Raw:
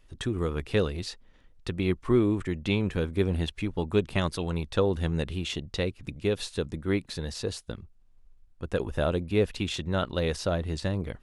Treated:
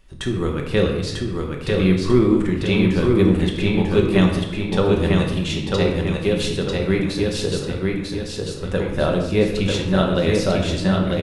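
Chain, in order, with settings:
0:04.25–0:04.68: guitar amp tone stack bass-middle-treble 5-5-5
repeating echo 945 ms, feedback 40%, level −3 dB
rectangular room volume 400 cubic metres, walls mixed, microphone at 1.1 metres
level +5 dB

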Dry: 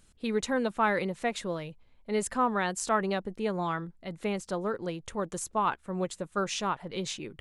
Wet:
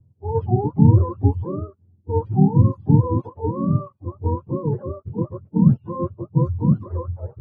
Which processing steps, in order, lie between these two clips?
frequency axis turned over on the octave scale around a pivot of 440 Hz
RIAA equalisation playback
low-pass that shuts in the quiet parts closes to 320 Hz, open at −16 dBFS
level +3.5 dB

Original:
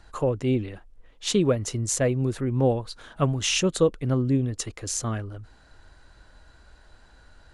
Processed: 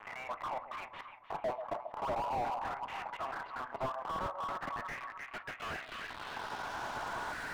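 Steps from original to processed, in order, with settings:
slices reordered back to front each 144 ms, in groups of 5
camcorder AGC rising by 6.4 dB per second
elliptic high-pass filter 650 Hz, stop band 40 dB
high-shelf EQ 3,200 Hz −6.5 dB
leveller curve on the samples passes 5
reversed playback
downward compressor 8 to 1, threshold −30 dBFS, peak gain reduction 10.5 dB
reversed playback
auto-filter band-pass square 0.41 Hz 970–2,100 Hz
centre clipping without the shift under −43.5 dBFS
low-pass filter sweep 990 Hz → 9,800 Hz, 0:03.97–0:07.48
echo with a time of its own for lows and highs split 850 Hz, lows 136 ms, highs 304 ms, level −12 dB
on a send at −9.5 dB: convolution reverb RT60 0.35 s, pre-delay 5 ms
on the sum: slew-rate limiting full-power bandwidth 9.4 Hz
level +5.5 dB

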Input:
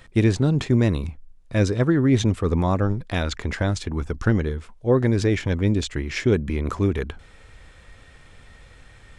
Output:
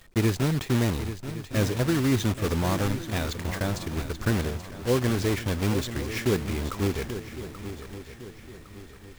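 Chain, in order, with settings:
one scale factor per block 3 bits
feedback echo with a long and a short gap by turns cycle 1,109 ms, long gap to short 3 to 1, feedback 39%, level −11.5 dB
level −5.5 dB

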